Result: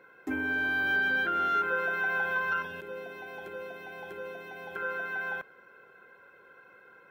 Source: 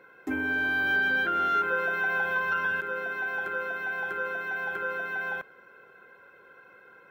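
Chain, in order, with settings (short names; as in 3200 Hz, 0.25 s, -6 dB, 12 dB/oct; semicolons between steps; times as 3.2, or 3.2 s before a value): 2.62–4.76 bell 1400 Hz -14.5 dB 0.91 oct; gain -2 dB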